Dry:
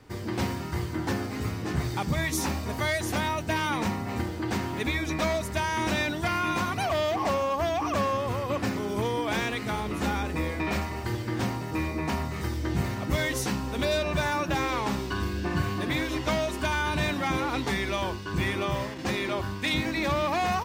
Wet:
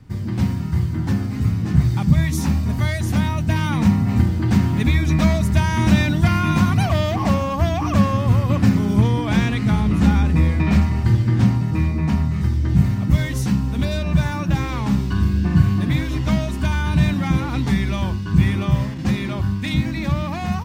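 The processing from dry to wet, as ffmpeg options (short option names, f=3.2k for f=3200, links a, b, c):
-filter_complex "[0:a]asettb=1/sr,asplit=3[a][b][c];[a]atrim=end=8.964[d];[b]atrim=start=8.96:end=12.69,asetpts=PTS-STARTPTS,afade=t=in:d=0.004:c=qsin,afade=t=out:st=3.726:d=0.004:c=qsin,highshelf=f=11k:g=-8.5[e];[c]atrim=start=12.686[f];[d][e]acrossfade=d=0.004:c1=hsin:c2=qsin[g];[g][f]acrossfade=d=0.004:c1=qsin:c2=hsin,lowshelf=f=270:t=q:w=1.5:g=12.5,dynaudnorm=f=250:g=11:m=11.5dB,volume=-2dB"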